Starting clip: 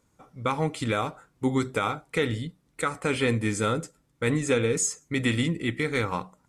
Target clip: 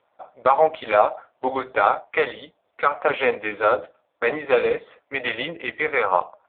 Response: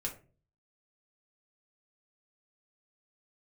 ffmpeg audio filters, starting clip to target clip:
-af "acontrast=60,highpass=f=650:t=q:w=4.5,volume=1dB" -ar 8000 -c:a libopencore_amrnb -b:a 5150

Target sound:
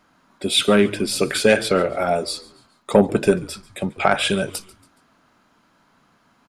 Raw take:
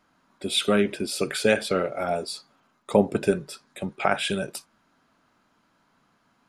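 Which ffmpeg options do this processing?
-filter_complex "[0:a]acontrast=64,asplit=4[a][b][c][d];[b]adelay=140,afreqshift=-99,volume=-21dB[e];[c]adelay=280,afreqshift=-198,volume=-28.3dB[f];[d]adelay=420,afreqshift=-297,volume=-35.7dB[g];[a][e][f][g]amix=inputs=4:normalize=0"

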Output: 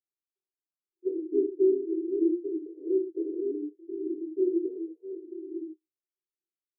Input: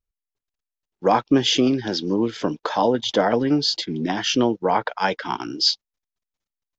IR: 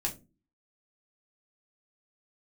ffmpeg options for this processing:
-filter_complex "[0:a]asuperpass=centerf=350:order=8:qfactor=4.1[a];[1:a]atrim=start_sample=2205,atrim=end_sample=3087,asetrate=26019,aresample=44100[b];[a][b]afir=irnorm=-1:irlink=0,volume=-4dB"

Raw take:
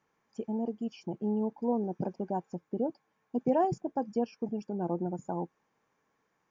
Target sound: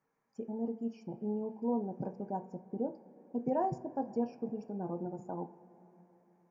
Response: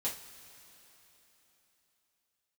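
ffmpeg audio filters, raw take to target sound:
-filter_complex "[0:a]equalizer=f=3.4k:t=o:w=0.54:g=-13,asplit=2[a][b];[1:a]atrim=start_sample=2205,lowpass=3k[c];[b][c]afir=irnorm=-1:irlink=0,volume=-5dB[d];[a][d]amix=inputs=2:normalize=0,volume=-8dB"

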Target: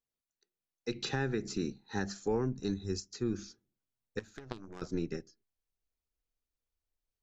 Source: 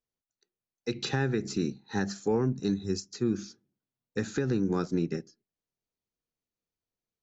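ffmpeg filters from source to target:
-filter_complex "[0:a]asubboost=boost=10:cutoff=54,asettb=1/sr,asplit=3[a][b][c];[a]atrim=end=4.194[d];[b]atrim=start=4.19:end=4.82,asetpts=PTS-STARTPTS,afade=t=in:d=0.004:c=qsin,afade=t=out:st=0.626:d=0.004:c=qsin,aeval=exprs='0.15*(cos(1*acos(clip(val(0)/0.15,-1,1)))-cos(1*PI/2))+0.075*(cos(3*acos(clip(val(0)/0.15,-1,1)))-cos(3*PI/2))+0.0211*(cos(5*acos(clip(val(0)/0.15,-1,1)))-cos(5*PI/2))+0.00237*(cos(6*acos(clip(val(0)/0.15,-1,1)))-cos(6*PI/2))':c=same[e];[c]atrim=start=4.816[f];[d][e]acrossfade=d=0.004:c1=hsin:c2=qsin[g];[g][f]acrossfade=d=0.004:c1=qsin:c2=hsin,volume=-3.5dB"

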